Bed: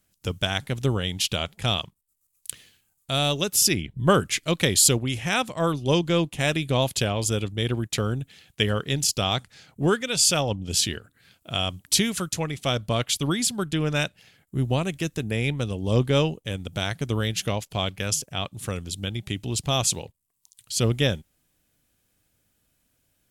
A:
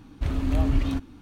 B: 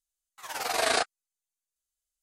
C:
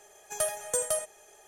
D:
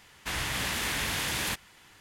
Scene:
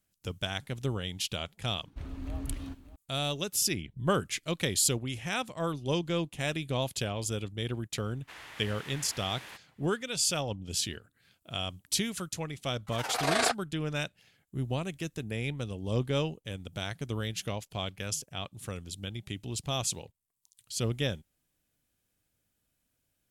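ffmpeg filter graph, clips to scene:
ffmpeg -i bed.wav -i cue0.wav -i cue1.wav -i cue2.wav -i cue3.wav -filter_complex "[0:a]volume=-8.5dB[link_01];[1:a]aecho=1:1:585:0.158[link_02];[4:a]bass=frequency=250:gain=-14,treble=frequency=4000:gain=-8[link_03];[2:a]highshelf=frequency=5700:gain=-7.5[link_04];[link_02]atrim=end=1.21,asetpts=PTS-STARTPTS,volume=-14dB,afade=type=in:duration=0.004:curve=hsin,afade=type=out:start_time=1.206:duration=0.004:curve=hsin,adelay=1750[link_05];[link_03]atrim=end=2,asetpts=PTS-STARTPTS,volume=-13.5dB,afade=type=in:duration=0.004:curve=hsin,afade=type=out:start_time=1.996:duration=0.004:curve=hsin,adelay=353682S[link_06];[link_04]atrim=end=2.22,asetpts=PTS-STARTPTS,volume=-1dB,afade=type=in:duration=0.004:curve=hsin,afade=type=out:start_time=2.216:duration=0.004:curve=hsin,adelay=12490[link_07];[link_01][link_05][link_06][link_07]amix=inputs=4:normalize=0" out.wav

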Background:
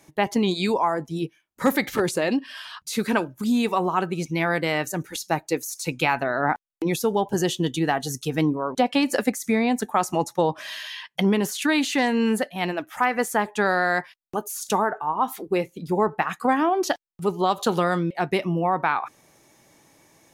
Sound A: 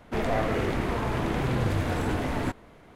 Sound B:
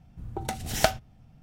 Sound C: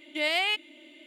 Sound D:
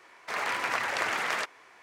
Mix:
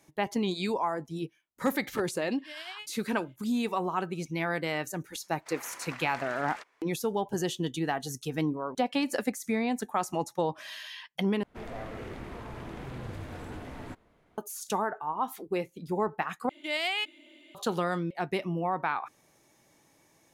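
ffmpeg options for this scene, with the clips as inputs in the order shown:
ffmpeg -i bed.wav -i cue0.wav -i cue1.wav -i cue2.wav -i cue3.wav -filter_complex "[3:a]asplit=2[link_01][link_02];[0:a]volume=-7.5dB[link_03];[link_01]tremolo=f=10:d=0.58[link_04];[link_03]asplit=3[link_05][link_06][link_07];[link_05]atrim=end=11.434[link_08];[1:a]atrim=end=2.95,asetpts=PTS-STARTPTS,volume=-13.5dB[link_09];[link_06]atrim=start=14.376:end=16.494[link_10];[link_02]atrim=end=1.06,asetpts=PTS-STARTPTS,volume=-4dB[link_11];[link_07]atrim=start=17.546[link_12];[link_04]atrim=end=1.06,asetpts=PTS-STARTPTS,volume=-15dB,afade=type=in:duration=0.004:curve=hsin,afade=type=out:start_time=1.056:duration=0.004:curve=hsin,adelay=2300[link_13];[4:a]atrim=end=1.82,asetpts=PTS-STARTPTS,volume=-14.5dB,afade=type=in:duration=0.1,afade=type=out:start_time=1.72:duration=0.1,adelay=5180[link_14];[link_08][link_09]acrossfade=duration=0.004:curve1=hsin:curve2=hsin[link_15];[link_15][link_10]acrossfade=duration=0.004:curve1=hsin:curve2=hsin[link_16];[link_16][link_11]acrossfade=duration=0.004:curve1=hsin:curve2=hsin[link_17];[link_17][link_12]acrossfade=duration=0.004:curve1=hsin:curve2=hsin[link_18];[link_18][link_13][link_14]amix=inputs=3:normalize=0" out.wav

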